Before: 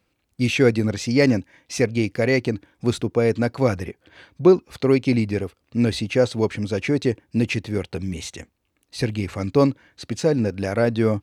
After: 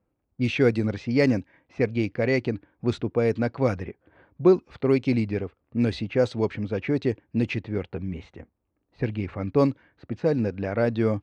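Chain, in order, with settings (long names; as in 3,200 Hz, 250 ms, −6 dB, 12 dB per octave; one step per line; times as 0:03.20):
high-shelf EQ 5,800 Hz −9 dB
low-pass that shuts in the quiet parts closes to 1,000 Hz, open at −12.5 dBFS
level −3.5 dB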